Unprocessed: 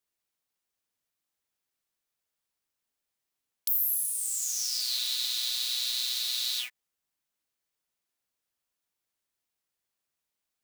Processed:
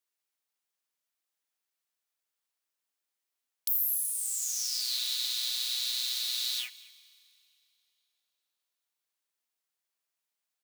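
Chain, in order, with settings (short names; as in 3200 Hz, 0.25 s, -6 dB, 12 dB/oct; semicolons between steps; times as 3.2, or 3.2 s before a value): HPF 540 Hz 6 dB/oct; echo 0.216 s -23 dB; Schroeder reverb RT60 2.9 s, combs from 30 ms, DRR 18.5 dB; gain -1.5 dB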